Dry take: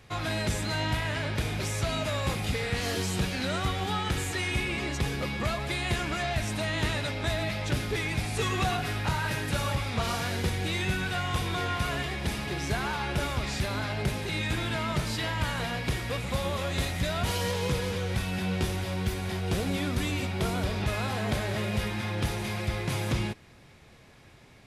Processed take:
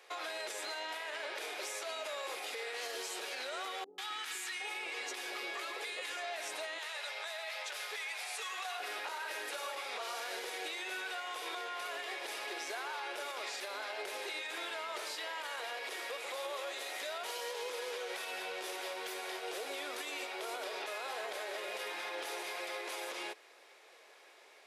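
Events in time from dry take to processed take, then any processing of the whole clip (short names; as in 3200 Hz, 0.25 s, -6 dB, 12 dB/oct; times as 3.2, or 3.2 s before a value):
3.84–6.17 three bands offset in time lows, highs, mids 0.14/0.76 s, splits 310/950 Hz
6.78–8.8 Bessel high-pass 810 Hz, order 4
whole clip: steep high-pass 400 Hz 36 dB/oct; compressor 2:1, threshold -36 dBFS; limiter -30 dBFS; gain -1.5 dB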